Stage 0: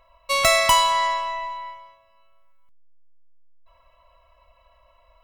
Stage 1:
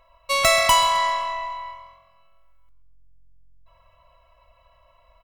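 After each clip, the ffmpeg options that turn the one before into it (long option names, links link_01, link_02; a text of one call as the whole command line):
ffmpeg -i in.wav -filter_complex "[0:a]asplit=5[link_01][link_02][link_03][link_04][link_05];[link_02]adelay=129,afreqshift=44,volume=-15dB[link_06];[link_03]adelay=258,afreqshift=88,volume=-23.2dB[link_07];[link_04]adelay=387,afreqshift=132,volume=-31.4dB[link_08];[link_05]adelay=516,afreqshift=176,volume=-39.5dB[link_09];[link_01][link_06][link_07][link_08][link_09]amix=inputs=5:normalize=0" out.wav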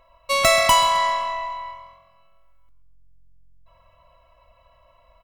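ffmpeg -i in.wav -af "equalizer=frequency=250:width_type=o:width=2.3:gain=5.5" out.wav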